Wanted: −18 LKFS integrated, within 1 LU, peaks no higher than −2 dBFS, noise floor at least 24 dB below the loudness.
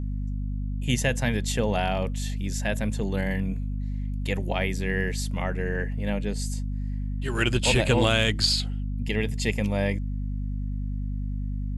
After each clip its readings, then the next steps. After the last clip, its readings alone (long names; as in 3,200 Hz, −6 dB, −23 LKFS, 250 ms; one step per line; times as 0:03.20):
mains hum 50 Hz; hum harmonics up to 250 Hz; level of the hum −27 dBFS; integrated loudness −27.0 LKFS; sample peak −8.5 dBFS; target loudness −18.0 LKFS
→ mains-hum notches 50/100/150/200/250 Hz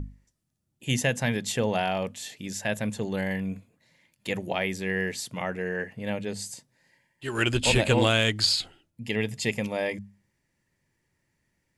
mains hum none found; integrated loudness −27.5 LKFS; sample peak −9.0 dBFS; target loudness −18.0 LKFS
→ level +9.5 dB
brickwall limiter −2 dBFS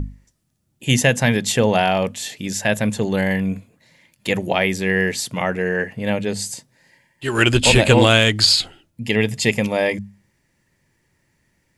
integrated loudness −18.5 LKFS; sample peak −2.0 dBFS; background noise floor −67 dBFS